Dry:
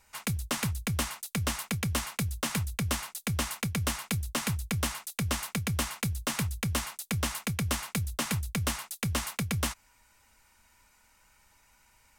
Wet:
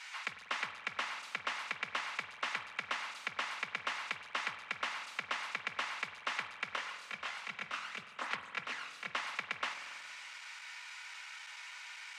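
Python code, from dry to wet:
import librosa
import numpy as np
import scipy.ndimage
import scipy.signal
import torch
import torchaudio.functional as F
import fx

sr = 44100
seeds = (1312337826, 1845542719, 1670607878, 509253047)

y = x + 0.5 * 10.0 ** (-25.5 / 20.0) * np.diff(np.sign(x), prepend=np.sign(x[:1]))
y = scipy.signal.sosfilt(scipy.signal.butter(2, 1300.0, 'highpass', fs=sr, output='sos'), y)
y = fx.peak_eq(y, sr, hz=2200.0, db=2.5, octaves=0.77)
y = fx.chorus_voices(y, sr, voices=6, hz=1.0, base_ms=25, depth_ms=3.0, mix_pct=60, at=(6.75, 9.12), fade=0.02)
y = fx.spacing_loss(y, sr, db_at_10k=42)
y = fx.rev_spring(y, sr, rt60_s=2.0, pass_ms=(46,), chirp_ms=45, drr_db=8.5)
y = y * librosa.db_to_amplitude(6.5)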